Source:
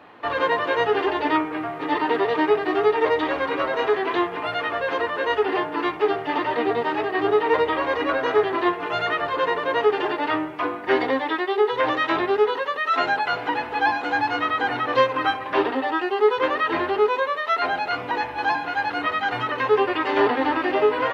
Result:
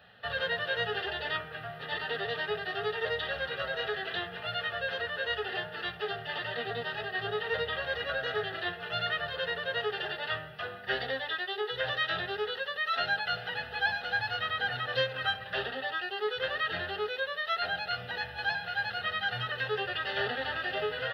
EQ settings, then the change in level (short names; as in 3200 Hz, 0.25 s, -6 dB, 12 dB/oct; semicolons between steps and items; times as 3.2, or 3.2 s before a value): band shelf 630 Hz -10.5 dB 2.6 oct; fixed phaser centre 1500 Hz, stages 8; 0.0 dB